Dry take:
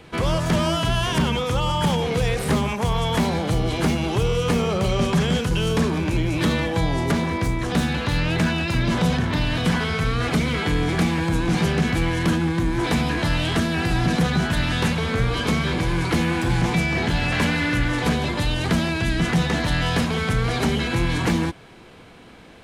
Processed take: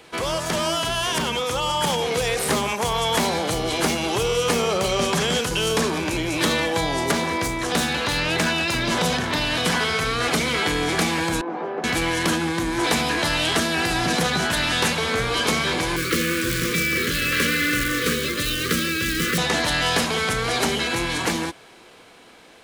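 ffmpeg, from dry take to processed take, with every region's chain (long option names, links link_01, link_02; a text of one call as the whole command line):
ffmpeg -i in.wav -filter_complex "[0:a]asettb=1/sr,asplit=3[link_01][link_02][link_03];[link_01]atrim=end=11.414[link_04];[link_02]atrim=start=11.41:end=11.84,asetpts=PTS-STARTPTS,afade=type=in:duration=0.004:curve=qsin,afade=type=out:start_time=0.426:duration=0.004:curve=qsin,asuperpass=centerf=520:order=4:qfactor=0.7,lowshelf=frequency=360:gain=-7[link_05];[link_03]atrim=start=11.836[link_06];[link_04][link_05]acrossfade=duration=0.004:curve1=hsin:curve2=qsin[link_07];[link_07][link_06]acrossfade=duration=0.004:curve1=qsin:curve2=hsin,asettb=1/sr,asplit=3[link_08][link_09][link_10];[link_08]atrim=end=15.964[link_11];[link_09]atrim=start=15.96:end=19.38,asetpts=PTS-STARTPTS,afade=type=in:duration=0.004:curve=qsin,afade=type=out:start_time=3.416:duration=0.004:curve=qsin,highshelf=frequency=4400:gain=-5.5,acrusher=bits=4:mode=log:mix=0:aa=0.000001,asuperstop=centerf=790:order=12:qfactor=1.4[link_12];[link_10]atrim=start=19.376[link_13];[link_11][link_12]acrossfade=duration=0.004:curve1=hsin:curve2=qsin[link_14];[link_14][link_13]acrossfade=duration=0.004:curve1=qsin:curve2=hsin,bass=frequency=250:gain=-13,treble=frequency=4000:gain=6,dynaudnorm=framelen=350:gausssize=11:maxgain=3.5dB" out.wav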